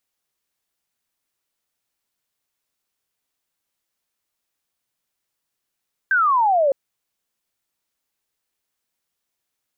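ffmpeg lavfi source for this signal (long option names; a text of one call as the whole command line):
ffmpeg -f lavfi -i "aevalsrc='0.2*clip(t/0.002,0,1)*clip((0.61-t)/0.002,0,1)*sin(2*PI*1600*0.61/log(530/1600)*(exp(log(530/1600)*t/0.61)-1))':duration=0.61:sample_rate=44100" out.wav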